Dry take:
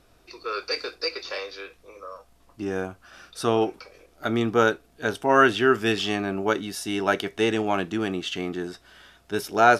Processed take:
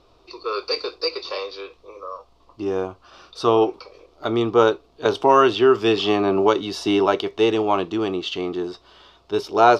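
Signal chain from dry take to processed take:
drawn EQ curve 110 Hz 0 dB, 220 Hz −4 dB, 380 Hz +6 dB, 730 Hz +2 dB, 1,100 Hz +9 dB, 1,600 Hz −9 dB, 2,800 Hz +1 dB, 4,400 Hz +4 dB, 10,000 Hz −16 dB
0:05.05–0:07.06: multiband upward and downward compressor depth 70%
level +1 dB

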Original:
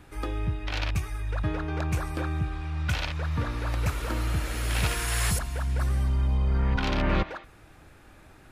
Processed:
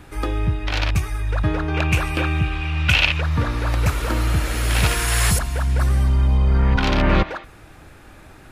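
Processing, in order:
0:01.74–0:03.21: parametric band 2,700 Hz +14 dB 0.61 octaves
level +8 dB

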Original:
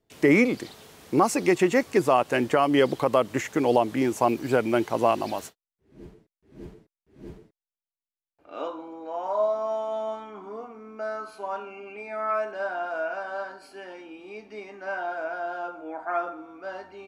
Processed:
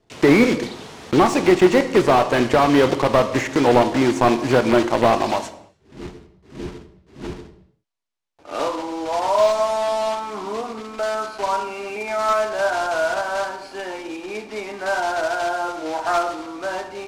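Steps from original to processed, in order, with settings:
one scale factor per block 3 bits
parametric band 940 Hz +3.5 dB 0.63 octaves
in parallel at +0.5 dB: downward compressor, threshold −34 dBFS, peak gain reduction 19 dB
on the sum: low-pass filter 6,400 Hz 12 dB per octave
on a send at −10 dB: convolution reverb, pre-delay 8 ms
on the sum: slew-rate limiting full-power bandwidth 160 Hz
level +4 dB

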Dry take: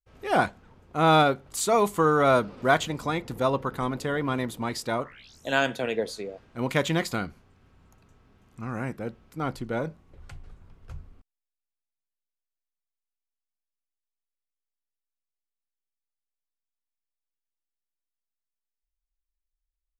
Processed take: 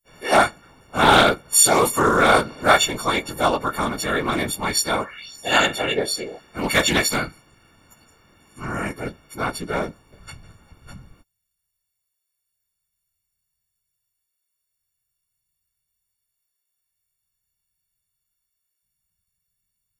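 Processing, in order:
every partial snapped to a pitch grid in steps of 4 semitones
random phases in short frames
highs frequency-modulated by the lows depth 0.16 ms
level +3.5 dB

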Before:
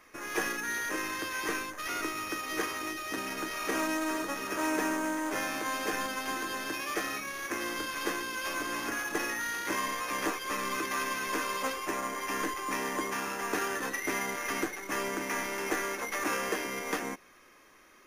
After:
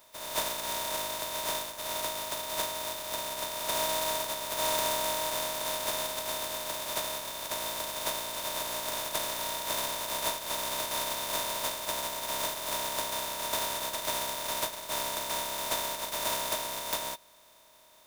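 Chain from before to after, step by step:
compressing power law on the bin magnitudes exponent 0.12
hollow resonant body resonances 630/940/3,600 Hz, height 17 dB, ringing for 50 ms
level −2 dB

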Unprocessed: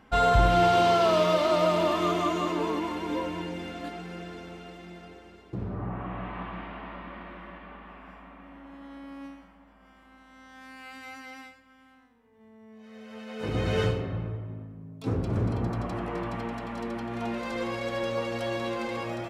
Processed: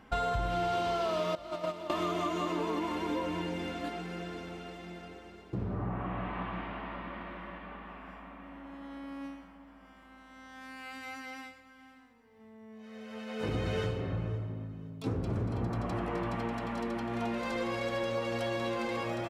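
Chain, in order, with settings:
0:01.35–0:01.90: noise gate −20 dBFS, range −18 dB
downward compressor 6 to 1, threshold −29 dBFS, peak gain reduction 12.5 dB
repeating echo 517 ms, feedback 32%, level −20 dB

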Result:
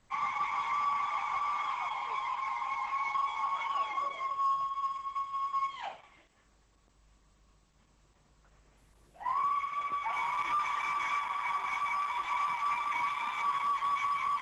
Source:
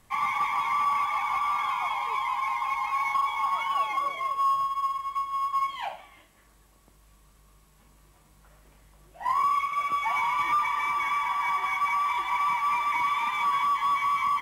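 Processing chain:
0:09.22–0:10.13: high-shelf EQ 3,800 Hz −8 dB
level −5.5 dB
Opus 12 kbit/s 48,000 Hz

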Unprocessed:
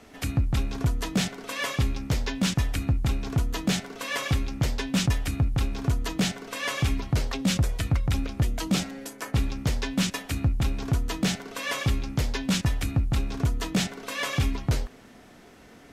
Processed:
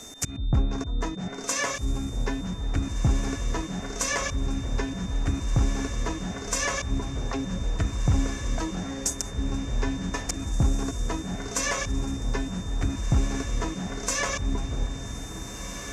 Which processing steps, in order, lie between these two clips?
treble cut that deepens with the level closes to 1,100 Hz, closed at −21.5 dBFS
volume swells 153 ms
high shelf with overshoot 4,800 Hz +11 dB, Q 3
on a send: feedback delay with all-pass diffusion 1,734 ms, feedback 55%, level −9.5 dB
on the sum: steady tone 3,600 Hz −49 dBFS
level +3.5 dB

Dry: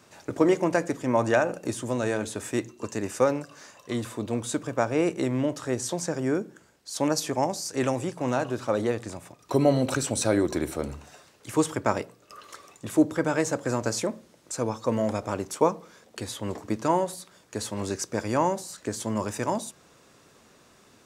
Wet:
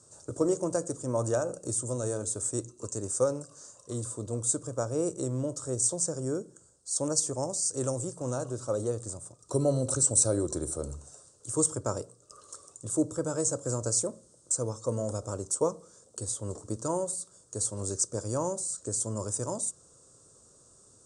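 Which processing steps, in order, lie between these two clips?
drawn EQ curve 120 Hz 0 dB, 220 Hz −10 dB, 530 Hz −3 dB, 790 Hz −13 dB, 1,300 Hz −8 dB, 2,100 Hz −29 dB, 8,800 Hz +12 dB, 13,000 Hz −27 dB

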